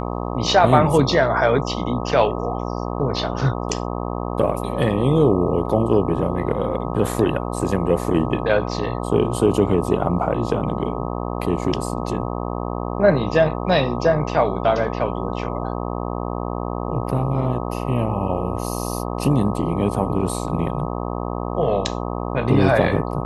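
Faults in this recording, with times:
buzz 60 Hz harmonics 21 -26 dBFS

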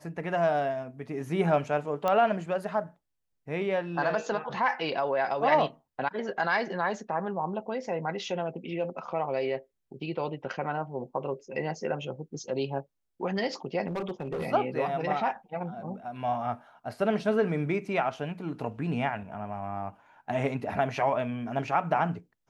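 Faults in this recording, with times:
2.08 pop -15 dBFS
13.87–14.46 clipped -28.5 dBFS

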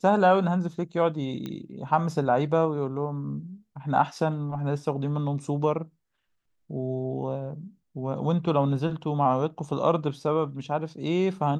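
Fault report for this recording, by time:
1.46 pop -21 dBFS

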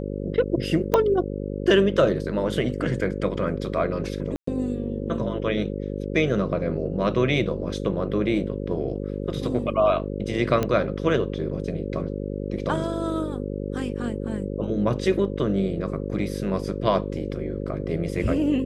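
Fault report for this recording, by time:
buzz 50 Hz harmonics 11 -30 dBFS
0.94 pop -7 dBFS
4.36–4.47 gap 0.114 s
10.63 pop -11 dBFS

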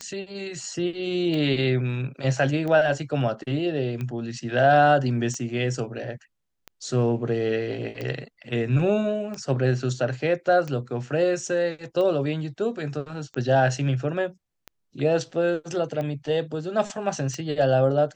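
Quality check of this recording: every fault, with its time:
tick 45 rpm -20 dBFS

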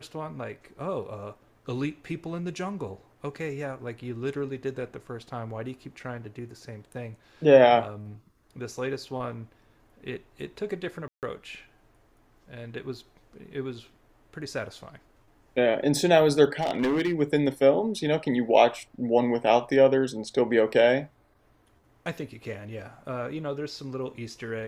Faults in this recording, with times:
11.08–11.23 gap 0.148 s
16.6–17.21 clipped -21 dBFS

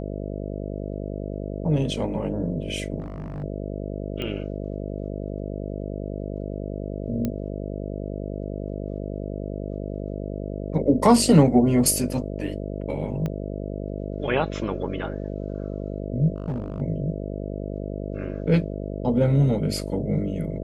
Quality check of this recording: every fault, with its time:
buzz 50 Hz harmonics 13 -31 dBFS
2.99–3.44 clipped -29 dBFS
4.22 pop -19 dBFS
7.25 pop -14 dBFS
13.26 pop -17 dBFS
16.36–16.82 clipped -24 dBFS

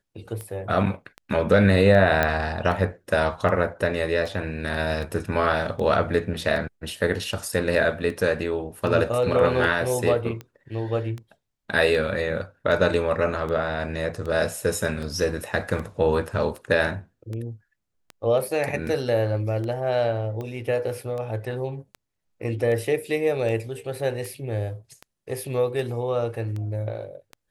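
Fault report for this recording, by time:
tick 78 rpm -22 dBFS
2.23 pop -8 dBFS

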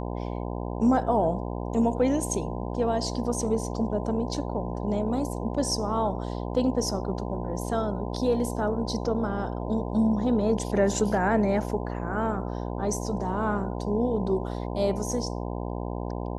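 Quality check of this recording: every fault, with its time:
buzz 60 Hz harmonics 17 -32 dBFS

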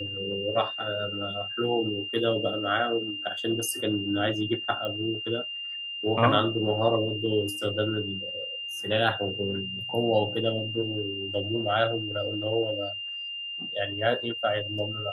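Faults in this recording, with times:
tone 2800 Hz -33 dBFS
4.85 pop -21 dBFS

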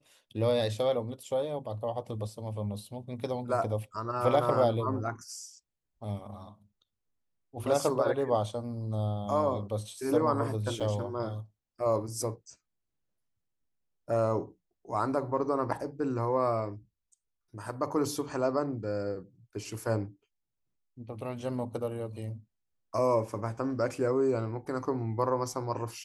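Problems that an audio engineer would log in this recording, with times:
10.8–10.81 gap 5.3 ms

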